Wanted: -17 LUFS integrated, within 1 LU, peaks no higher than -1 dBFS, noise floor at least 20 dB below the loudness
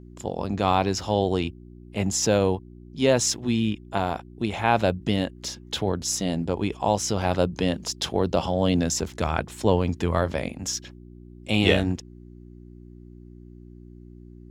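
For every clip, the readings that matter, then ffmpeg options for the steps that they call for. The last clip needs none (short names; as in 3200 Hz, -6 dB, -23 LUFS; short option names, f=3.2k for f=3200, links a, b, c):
hum 60 Hz; harmonics up to 360 Hz; hum level -45 dBFS; loudness -25.0 LUFS; peak -4.0 dBFS; loudness target -17.0 LUFS
-> -af "bandreject=f=60:t=h:w=4,bandreject=f=120:t=h:w=4,bandreject=f=180:t=h:w=4,bandreject=f=240:t=h:w=4,bandreject=f=300:t=h:w=4,bandreject=f=360:t=h:w=4"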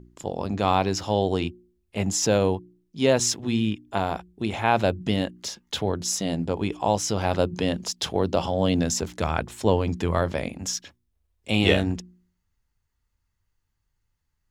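hum none; loudness -25.0 LUFS; peak -4.0 dBFS; loudness target -17.0 LUFS
-> -af "volume=8dB,alimiter=limit=-1dB:level=0:latency=1"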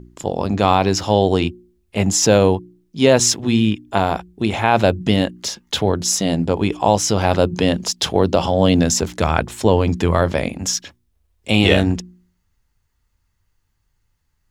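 loudness -17.5 LUFS; peak -1.0 dBFS; noise floor -68 dBFS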